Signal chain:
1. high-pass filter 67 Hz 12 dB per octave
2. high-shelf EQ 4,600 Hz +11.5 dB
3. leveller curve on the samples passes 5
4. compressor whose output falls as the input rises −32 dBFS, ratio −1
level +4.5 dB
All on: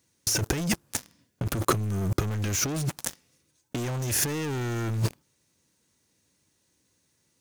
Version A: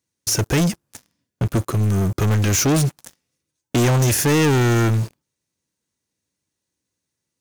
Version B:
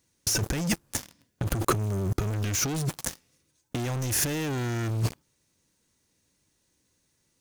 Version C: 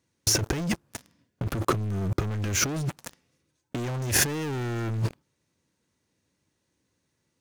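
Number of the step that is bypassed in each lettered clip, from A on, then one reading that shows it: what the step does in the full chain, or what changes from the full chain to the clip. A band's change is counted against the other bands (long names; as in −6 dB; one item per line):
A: 4, change in crest factor −16.0 dB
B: 1, change in crest factor −2.5 dB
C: 2, 2 kHz band +2.5 dB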